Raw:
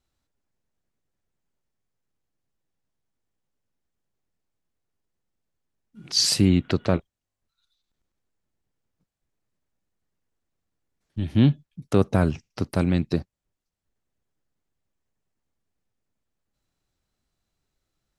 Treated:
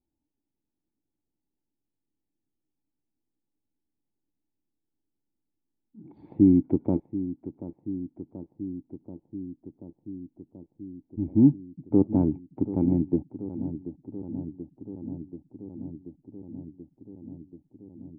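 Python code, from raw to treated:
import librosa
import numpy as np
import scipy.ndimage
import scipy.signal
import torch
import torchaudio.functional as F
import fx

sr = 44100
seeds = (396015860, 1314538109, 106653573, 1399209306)

p1 = fx.formant_cascade(x, sr, vowel='u')
p2 = p1 + fx.echo_filtered(p1, sr, ms=733, feedback_pct=79, hz=1600.0, wet_db=-13, dry=0)
y = F.gain(torch.from_numpy(p2), 7.0).numpy()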